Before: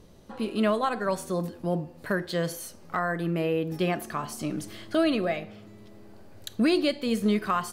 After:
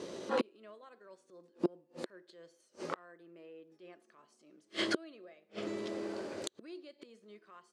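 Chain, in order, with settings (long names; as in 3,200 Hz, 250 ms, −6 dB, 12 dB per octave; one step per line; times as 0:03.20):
transient designer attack −8 dB, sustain −2 dB
gate with flip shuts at −31 dBFS, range −40 dB
loudspeaker in its box 320–8,300 Hz, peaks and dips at 360 Hz +7 dB, 530 Hz +4 dB, 770 Hz −5 dB
level +13 dB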